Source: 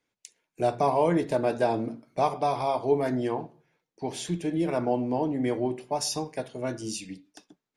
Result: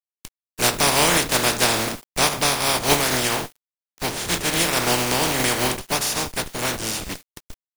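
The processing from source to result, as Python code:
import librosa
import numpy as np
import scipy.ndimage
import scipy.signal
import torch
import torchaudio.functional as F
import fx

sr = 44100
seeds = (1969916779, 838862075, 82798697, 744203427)

p1 = fx.spec_flatten(x, sr, power=0.24)
p2 = fx.schmitt(p1, sr, flips_db=-35.0)
p3 = p1 + (p2 * librosa.db_to_amplitude(-8.5))
p4 = fx.quant_dither(p3, sr, seeds[0], bits=8, dither='none')
y = p4 * librosa.db_to_amplitude(4.5)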